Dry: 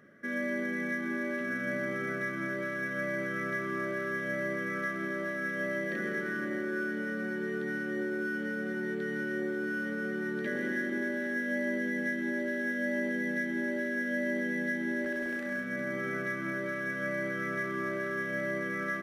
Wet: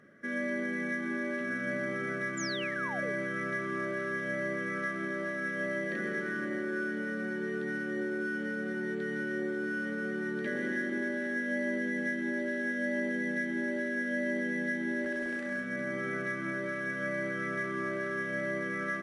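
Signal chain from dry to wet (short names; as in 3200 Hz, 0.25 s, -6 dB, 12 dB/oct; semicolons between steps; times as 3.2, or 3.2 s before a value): painted sound fall, 2.37–3.13, 370–7500 Hz -40 dBFS; MP3 56 kbps 24000 Hz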